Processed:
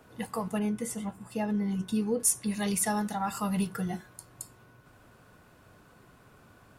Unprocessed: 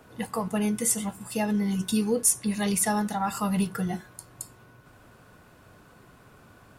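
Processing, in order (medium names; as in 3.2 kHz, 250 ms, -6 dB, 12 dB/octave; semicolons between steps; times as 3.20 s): 0.59–2.20 s: treble shelf 3 kHz -11.5 dB; trim -3.5 dB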